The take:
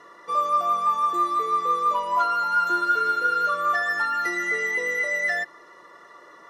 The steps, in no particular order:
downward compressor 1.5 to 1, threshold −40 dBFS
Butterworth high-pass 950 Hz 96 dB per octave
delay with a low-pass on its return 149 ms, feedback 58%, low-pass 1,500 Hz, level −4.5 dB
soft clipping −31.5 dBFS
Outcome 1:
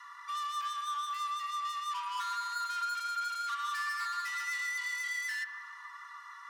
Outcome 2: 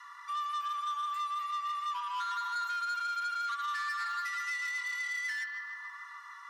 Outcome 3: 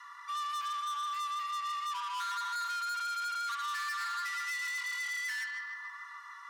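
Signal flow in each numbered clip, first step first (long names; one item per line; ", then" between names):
soft clipping, then Butterworth high-pass, then downward compressor, then delay with a low-pass on its return
delay with a low-pass on its return, then downward compressor, then soft clipping, then Butterworth high-pass
delay with a low-pass on its return, then soft clipping, then downward compressor, then Butterworth high-pass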